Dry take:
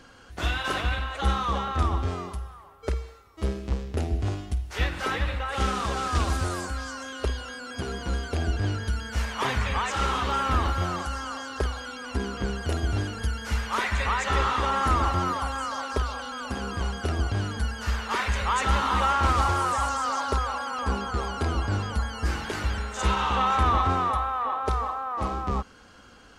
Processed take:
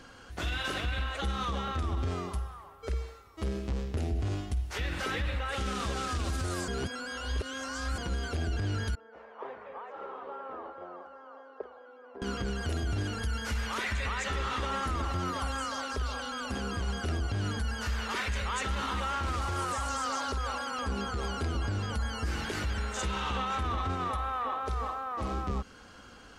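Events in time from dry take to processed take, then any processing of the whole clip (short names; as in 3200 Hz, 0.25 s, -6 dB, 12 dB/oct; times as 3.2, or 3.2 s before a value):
6.68–7.98 reverse
8.95–12.22 ladder band-pass 580 Hz, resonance 40%
whole clip: dynamic EQ 940 Hz, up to -7 dB, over -40 dBFS, Q 1.3; limiter -24 dBFS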